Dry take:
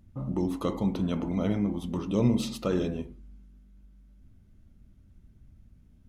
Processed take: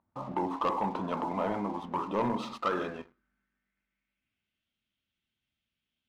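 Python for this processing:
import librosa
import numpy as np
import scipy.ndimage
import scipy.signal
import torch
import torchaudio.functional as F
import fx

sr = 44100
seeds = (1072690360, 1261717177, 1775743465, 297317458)

y = fx.filter_sweep_bandpass(x, sr, from_hz=960.0, to_hz=3100.0, start_s=2.27, end_s=4.68, q=3.3)
y = fx.leveller(y, sr, passes=2)
y = fx.high_shelf(y, sr, hz=9400.0, db=-8.0)
y = F.gain(torch.from_numpy(y), 7.5).numpy()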